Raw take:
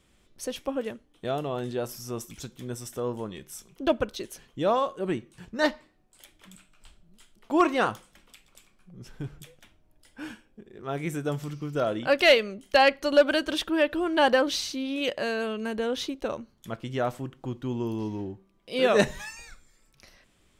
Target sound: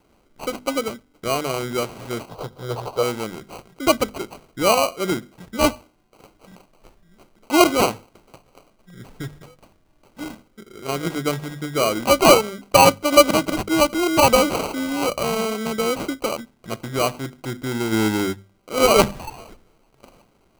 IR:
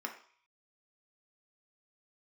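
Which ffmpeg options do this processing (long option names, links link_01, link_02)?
-filter_complex "[0:a]aresample=22050,aresample=44100,acrusher=samples=25:mix=1:aa=0.000001,asettb=1/sr,asplit=3[link_01][link_02][link_03];[link_01]atrim=end=2.294[link_04];[link_02]atrim=start=2.29:end=3.03,asetpts=PTS-STARTPTS,afade=type=in:duration=0.004:curve=qsin,afade=type=out:start_time=0.736:duration=0.004:curve=qsin,equalizer=frequency=125:width_type=o:width=1:gain=5,equalizer=frequency=250:width_type=o:width=1:gain=-10,equalizer=frequency=500:width_type=o:width=1:gain=8,equalizer=frequency=1000:width_type=o:width=1:gain=8,equalizer=frequency=2000:width_type=o:width=1:gain=-9,equalizer=frequency=4000:width_type=o:width=1:gain=5,equalizer=frequency=8000:width_type=o:width=1:gain=-5[link_05];[link_03]atrim=start=3.026[link_06];[link_04][link_05]acrossfade=duration=0.004:curve1=hsin:curve2=qsin[link_07];[link_07][link_06]acrossfade=duration=0.004:curve1=qsin:curve2=hsin,asplit=3[link_08][link_09][link_10];[link_08]afade=type=out:start_time=17.91:duration=0.02[link_11];[link_09]acontrast=66,afade=type=in:start_time=17.91:duration=0.02,afade=type=out:start_time=18.32:duration=0.02[link_12];[link_10]afade=type=in:start_time=18.32:duration=0.02[link_13];[link_11][link_12][link_13]amix=inputs=3:normalize=0,lowshelf=frequency=110:gain=-6.5,bandreject=frequency=50:width_type=h:width=6,bandreject=frequency=100:width_type=h:width=6,bandreject=frequency=150:width_type=h:width=6,bandreject=frequency=200:width_type=h:width=6,bandreject=frequency=250:width_type=h:width=6,volume=7dB"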